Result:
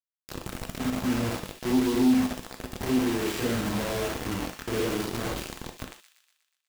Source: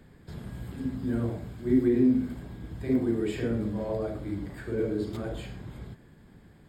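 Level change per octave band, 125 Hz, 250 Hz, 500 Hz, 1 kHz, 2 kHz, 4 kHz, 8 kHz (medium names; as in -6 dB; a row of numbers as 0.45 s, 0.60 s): -1.5 dB, +1.0 dB, 0.0 dB, +11.5 dB, +9.5 dB, +14.5 dB, no reading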